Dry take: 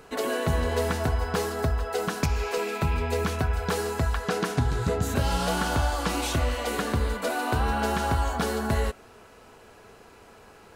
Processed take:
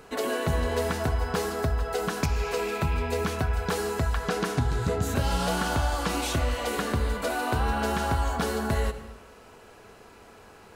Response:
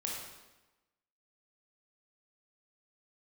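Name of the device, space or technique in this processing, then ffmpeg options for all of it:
ducked reverb: -filter_complex "[0:a]asplit=3[link_01][link_02][link_03];[1:a]atrim=start_sample=2205[link_04];[link_02][link_04]afir=irnorm=-1:irlink=0[link_05];[link_03]apad=whole_len=474144[link_06];[link_05][link_06]sidechaincompress=threshold=-29dB:ratio=8:attack=16:release=128,volume=-8.5dB[link_07];[link_01][link_07]amix=inputs=2:normalize=0,volume=-2dB"

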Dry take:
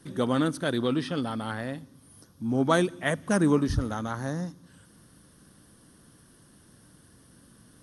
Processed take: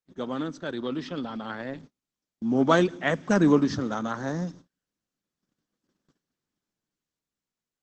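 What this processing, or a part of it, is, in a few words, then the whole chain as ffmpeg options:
video call: -af "highpass=frequency=150:width=0.5412,highpass=frequency=150:width=1.3066,dynaudnorm=framelen=340:gausssize=9:maxgain=15dB,agate=range=-38dB:threshold=-38dB:ratio=16:detection=peak,volume=-5.5dB" -ar 48000 -c:a libopus -b:a 12k

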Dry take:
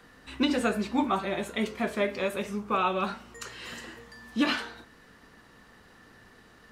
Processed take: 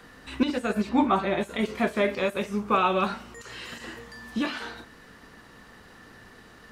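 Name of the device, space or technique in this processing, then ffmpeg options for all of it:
de-esser from a sidechain: -filter_complex "[0:a]asettb=1/sr,asplit=3[link_01][link_02][link_03];[link_01]atrim=end=0.894[link_04];[link_02]atrim=start=0.89:end=1.41,asetpts=PTS-STARTPTS,afade=type=in:duration=0.004:curve=qsin,afade=type=out:start_time=0.516:duration=0.004:curve=qsin,highshelf=frequency=4900:gain=-10[link_05];[link_03]atrim=start=1.406[link_06];[link_04][link_05]acrossfade=duration=0.004:curve1=hsin:curve2=qsin[link_07];[link_07][link_06]acrossfade=duration=0.004:curve1=qsin:curve2=hsin,asplit=2[link_08][link_09];[link_09]highpass=frequency=5300:width=0.5412,highpass=frequency=5300:width=1.3066,apad=whole_len=296287[link_10];[link_08][link_10]sidechaincompress=threshold=-53dB:ratio=8:attack=1.1:release=30,volume=5dB"

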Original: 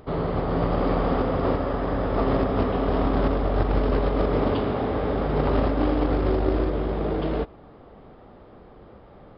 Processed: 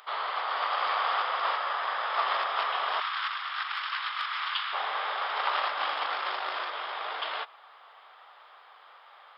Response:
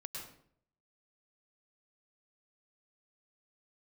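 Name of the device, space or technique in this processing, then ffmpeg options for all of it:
headphones lying on a table: -filter_complex "[0:a]highpass=frequency=1000:width=0.5412,highpass=frequency=1000:width=1.3066,equalizer=frequency=3300:width_type=o:width=0.43:gain=5,asettb=1/sr,asplit=3[link_01][link_02][link_03];[link_01]atrim=end=3.004[link_04];[link_02]atrim=start=3:end=4.73,asetpts=PTS-STARTPTS,afade=type=in:duration=0.004:curve=qsin,afade=type=out:start_time=1.726:duration=0.004:curve=qsin,highpass=frequency=1200:width=0.5412,highpass=frequency=1200:width=1.3066[link_05];[link_03]atrim=start=4.726[link_06];[link_04][link_05]acrossfade=duration=0.004:curve1=hsin:curve2=qsin[link_07];[link_07][link_06]acrossfade=duration=0.004:curve1=qsin:curve2=hsin,volume=6dB"

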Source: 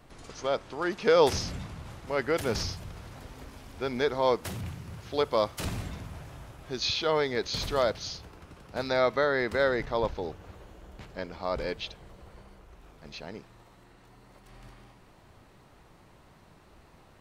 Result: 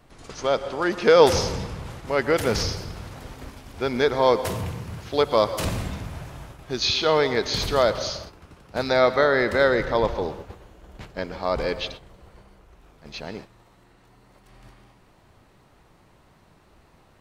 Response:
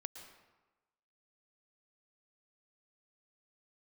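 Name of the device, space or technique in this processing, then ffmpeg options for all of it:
keyed gated reverb: -filter_complex "[0:a]asplit=3[link_01][link_02][link_03];[1:a]atrim=start_sample=2205[link_04];[link_02][link_04]afir=irnorm=-1:irlink=0[link_05];[link_03]apad=whole_len=758654[link_06];[link_05][link_06]sidechaingate=range=-33dB:threshold=-45dB:ratio=16:detection=peak,volume=5dB[link_07];[link_01][link_07]amix=inputs=2:normalize=0"

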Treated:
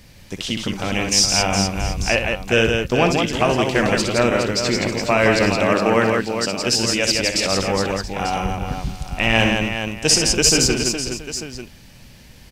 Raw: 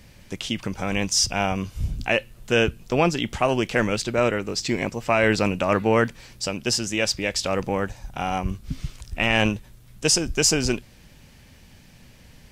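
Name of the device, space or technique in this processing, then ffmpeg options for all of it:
presence and air boost: -filter_complex "[0:a]equalizer=frequency=4500:width_type=o:width=0.77:gain=3,highshelf=frequency=12000:gain=3.5,asettb=1/sr,asplit=3[link_01][link_02][link_03];[link_01]atrim=end=5.584[link_04];[link_02]atrim=start=5.58:end=6.6,asetpts=PTS-STARTPTS,afade=type=in:duration=0.004:curve=qsin,afade=type=out:start_time=1.016:duration=0.004:curve=qsin,highpass=140[link_05];[link_03]atrim=start=6.596[link_06];[link_04][link_05]acrossfade=duration=0.004:curve1=hsin:curve2=qsin[link_07];[link_07][link_06]acrossfade=duration=0.004:curve1=qsin:curve2=hsin,aecho=1:1:62|167|415|678|894:0.398|0.631|0.422|0.133|0.237,volume=2dB"

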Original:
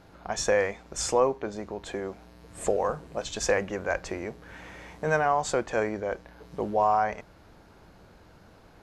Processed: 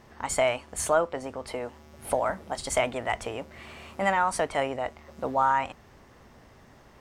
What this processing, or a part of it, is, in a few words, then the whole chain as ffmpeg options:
nightcore: -af "asetrate=55566,aresample=44100"

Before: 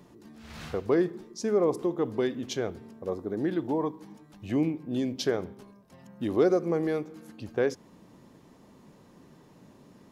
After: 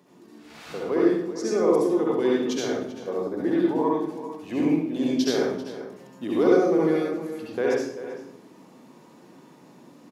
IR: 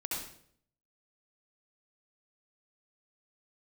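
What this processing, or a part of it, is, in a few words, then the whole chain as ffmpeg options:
far laptop microphone: -filter_complex "[1:a]atrim=start_sample=2205[link_01];[0:a][link_01]afir=irnorm=-1:irlink=0,highpass=200,dynaudnorm=framelen=840:gausssize=3:maxgain=3dB,bandreject=frequency=50:width_type=h:width=6,bandreject=frequency=100:width_type=h:width=6,bandreject=frequency=150:width_type=h:width=6,bandreject=frequency=200:width_type=h:width=6,asplit=2[link_02][link_03];[link_03]adelay=390.7,volume=-12dB,highshelf=frequency=4000:gain=-8.79[link_04];[link_02][link_04]amix=inputs=2:normalize=0"

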